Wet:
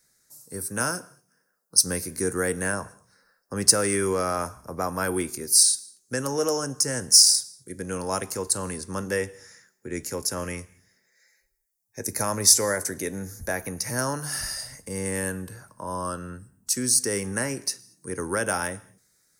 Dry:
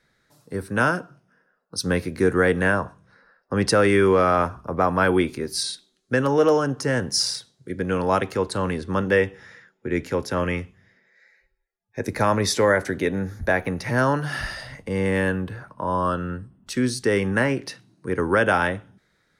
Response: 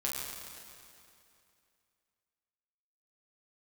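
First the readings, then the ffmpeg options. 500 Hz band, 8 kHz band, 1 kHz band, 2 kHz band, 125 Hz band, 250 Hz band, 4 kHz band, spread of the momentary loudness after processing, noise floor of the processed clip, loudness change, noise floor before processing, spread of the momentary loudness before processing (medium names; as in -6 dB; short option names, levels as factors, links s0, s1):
-8.0 dB, +13.0 dB, -8.0 dB, -8.0 dB, -8.0 dB, -8.0 dB, +4.5 dB, 18 LU, -71 dBFS, -1.0 dB, -69 dBFS, 13 LU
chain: -filter_complex "[0:a]aexciter=amount=8:drive=8.5:freq=5100,asplit=2[s0][s1];[1:a]atrim=start_sample=2205,afade=t=out:st=0.29:d=0.01,atrim=end_sample=13230[s2];[s1][s2]afir=irnorm=-1:irlink=0,volume=0.0841[s3];[s0][s3]amix=inputs=2:normalize=0,volume=0.376"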